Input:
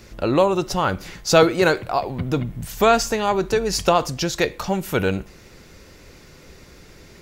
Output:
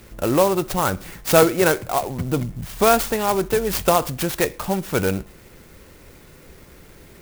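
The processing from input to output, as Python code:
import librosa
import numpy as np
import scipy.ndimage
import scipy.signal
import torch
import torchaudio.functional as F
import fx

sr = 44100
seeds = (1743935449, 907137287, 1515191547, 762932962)

y = fx.clock_jitter(x, sr, seeds[0], jitter_ms=0.056)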